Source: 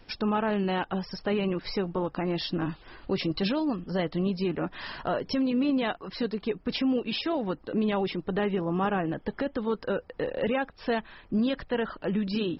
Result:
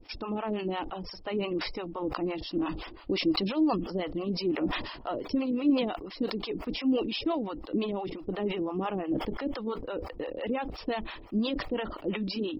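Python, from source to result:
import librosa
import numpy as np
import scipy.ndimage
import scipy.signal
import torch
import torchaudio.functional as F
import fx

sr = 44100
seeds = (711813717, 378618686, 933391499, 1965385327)

y = fx.graphic_eq_31(x, sr, hz=(160, 315, 1600, 4000), db=(-10, 8, -11, -3))
y = fx.harmonic_tremolo(y, sr, hz=5.8, depth_pct=100, crossover_hz=560.0)
y = fx.sustainer(y, sr, db_per_s=59.0)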